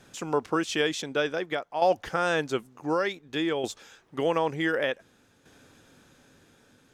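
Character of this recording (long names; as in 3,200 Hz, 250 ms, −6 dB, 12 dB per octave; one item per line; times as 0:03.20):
tremolo saw down 0.55 Hz, depth 60%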